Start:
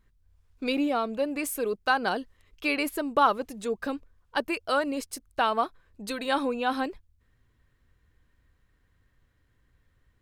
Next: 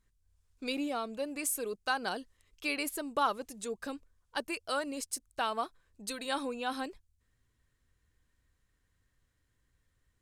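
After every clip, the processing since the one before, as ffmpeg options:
-af "equalizer=f=8100:w=0.63:g=11.5,volume=0.376"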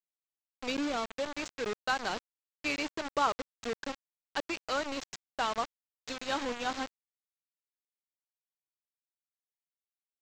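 -af "aresample=16000,acrusher=bits=5:mix=0:aa=0.000001,aresample=44100,adynamicsmooth=sensitivity=3:basefreq=5600,volume=1.12"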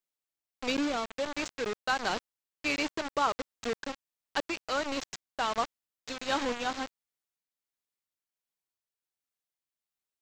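-af "tremolo=f=1.4:d=0.31,volume=1.5"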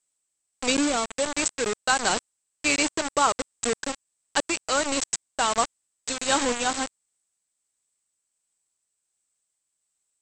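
-af "lowpass=f=8000:t=q:w=13,volume=2"

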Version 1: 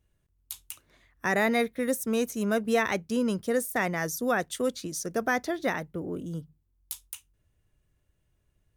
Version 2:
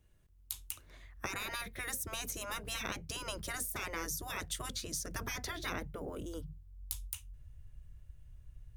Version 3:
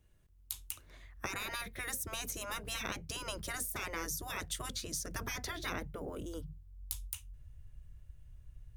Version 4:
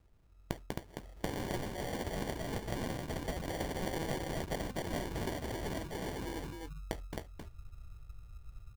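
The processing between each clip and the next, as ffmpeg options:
-filter_complex "[0:a]asubboost=boost=9.5:cutoff=94,afftfilt=real='re*lt(hypot(re,im),0.0794)':imag='im*lt(hypot(re,im),0.0794)':win_size=1024:overlap=0.75,acrossover=split=410[s0][s1];[s1]acompressor=threshold=0.0112:ratio=6[s2];[s0][s2]amix=inputs=2:normalize=0,volume=1.41"
-af anull
-af "aecho=1:1:266:0.631,acrusher=samples=34:mix=1:aa=0.000001,volume=1.19"

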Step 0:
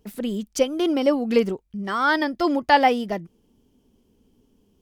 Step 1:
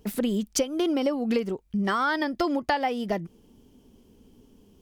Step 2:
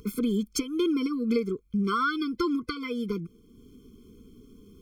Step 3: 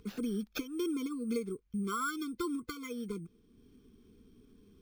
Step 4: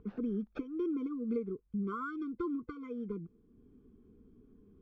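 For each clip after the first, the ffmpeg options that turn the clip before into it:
-af "acompressor=threshold=0.0398:ratio=12,volume=2"
-af "acompressor=mode=upward:threshold=0.00631:ratio=2.5,afftfilt=real='re*eq(mod(floor(b*sr/1024/510),2),0)':imag='im*eq(mod(floor(b*sr/1024/510),2),0)':win_size=1024:overlap=0.75"
-af "acrusher=samples=5:mix=1:aa=0.000001,volume=0.376"
-af "lowpass=1100"

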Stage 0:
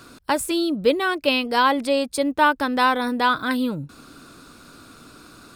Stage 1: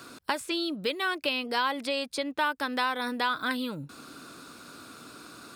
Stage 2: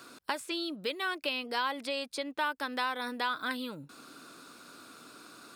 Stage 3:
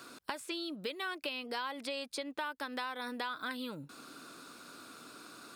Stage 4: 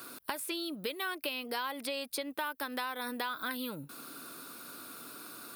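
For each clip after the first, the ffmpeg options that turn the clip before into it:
-filter_complex "[0:a]highpass=67,lowshelf=f=150:g=-9.5,acrossover=split=1300|5600[s0][s1][s2];[s0]acompressor=threshold=0.0251:ratio=4[s3];[s1]acompressor=threshold=0.0355:ratio=4[s4];[s2]acompressor=threshold=0.00355:ratio=4[s5];[s3][s4][s5]amix=inputs=3:normalize=0"
-af "equalizer=f=77:w=0.65:g=-9.5,volume=0.631"
-af "acompressor=threshold=0.0158:ratio=3"
-af "aexciter=amount=5.8:drive=4.8:freq=10000,volume=1.26"

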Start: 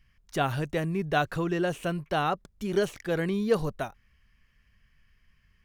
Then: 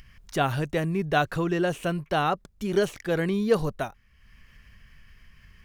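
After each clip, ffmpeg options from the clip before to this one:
-af "acompressor=mode=upward:threshold=0.00708:ratio=2.5,volume=1.33"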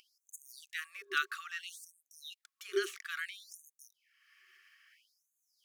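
-af "aeval=exprs='0.251*(abs(mod(val(0)/0.251+3,4)-2)-1)':c=same,afftfilt=real='re*(1-between(b*sr/4096,400,1100))':imag='im*(1-between(b*sr/4096,400,1100))':win_size=4096:overlap=0.75,afftfilt=real='re*gte(b*sr/1024,340*pow(6300/340,0.5+0.5*sin(2*PI*0.6*pts/sr)))':imag='im*gte(b*sr/1024,340*pow(6300/340,0.5+0.5*sin(2*PI*0.6*pts/sr)))':win_size=1024:overlap=0.75,volume=0.631"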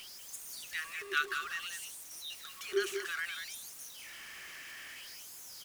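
-af "aeval=exprs='val(0)+0.5*0.00668*sgn(val(0))':c=same,aecho=1:1:189:0.422"

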